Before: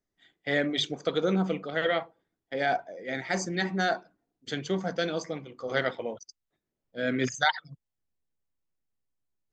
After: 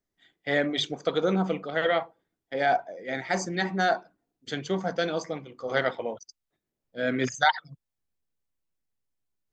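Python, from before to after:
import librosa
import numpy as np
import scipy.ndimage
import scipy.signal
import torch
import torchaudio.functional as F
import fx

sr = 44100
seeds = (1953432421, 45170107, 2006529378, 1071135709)

y = fx.dynamic_eq(x, sr, hz=870.0, q=1.1, threshold_db=-40.0, ratio=4.0, max_db=5)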